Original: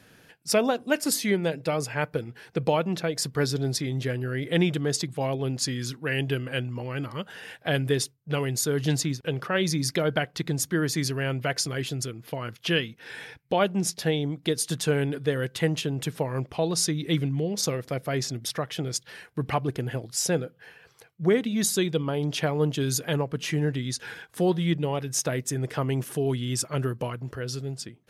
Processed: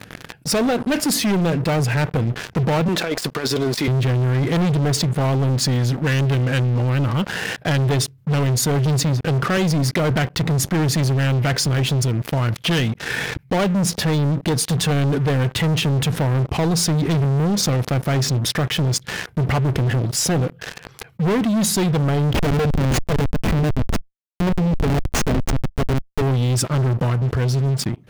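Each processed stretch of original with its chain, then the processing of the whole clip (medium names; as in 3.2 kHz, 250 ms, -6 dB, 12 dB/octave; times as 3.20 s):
2.88–3.88 s: high-pass 420 Hz + compressor with a negative ratio -33 dBFS, ratio -0.5
9.57–10.11 s: high-pass 41 Hz 24 dB/octave + bass shelf 120 Hz -7.5 dB
22.33–26.22 s: bass shelf 66 Hz -5.5 dB + comb 4.5 ms, depth 83% + Schmitt trigger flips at -24.5 dBFS
whole clip: tone controls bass +9 dB, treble -7 dB; waveshaping leveller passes 5; level flattener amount 50%; trim -8.5 dB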